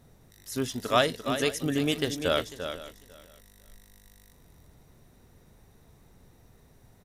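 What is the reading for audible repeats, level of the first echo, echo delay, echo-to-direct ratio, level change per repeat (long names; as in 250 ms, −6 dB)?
4, −9.0 dB, 344 ms, −8.5 dB, repeats not evenly spaced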